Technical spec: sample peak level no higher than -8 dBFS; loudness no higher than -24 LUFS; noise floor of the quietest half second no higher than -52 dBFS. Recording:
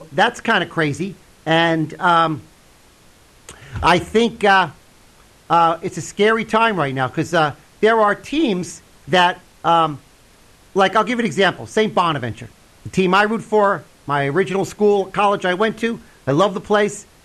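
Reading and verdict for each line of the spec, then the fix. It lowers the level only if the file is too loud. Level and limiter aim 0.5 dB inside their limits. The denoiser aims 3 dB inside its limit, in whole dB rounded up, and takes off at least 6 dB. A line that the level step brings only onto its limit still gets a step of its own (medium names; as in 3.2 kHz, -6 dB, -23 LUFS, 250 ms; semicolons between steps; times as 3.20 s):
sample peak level -2.5 dBFS: fail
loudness -17.5 LUFS: fail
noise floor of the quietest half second -50 dBFS: fail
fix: trim -7 dB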